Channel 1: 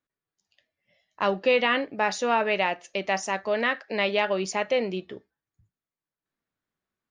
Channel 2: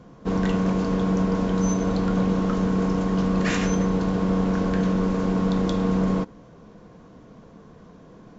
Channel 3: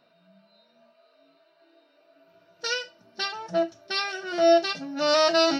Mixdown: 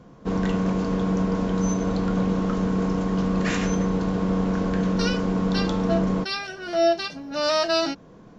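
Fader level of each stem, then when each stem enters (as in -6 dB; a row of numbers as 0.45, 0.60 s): off, -1.0 dB, -1.5 dB; off, 0.00 s, 2.35 s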